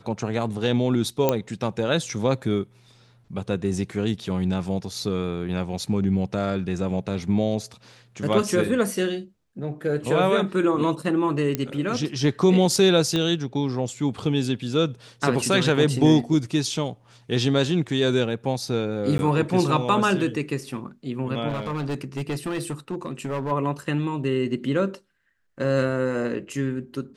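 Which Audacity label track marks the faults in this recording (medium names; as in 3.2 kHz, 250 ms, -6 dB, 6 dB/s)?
1.290000	1.290000	pop -6 dBFS
11.550000	11.550000	pop -9 dBFS
13.160000	13.160000	pop -12 dBFS
19.180000	19.190000	dropout
21.480000	23.520000	clipped -23.5 dBFS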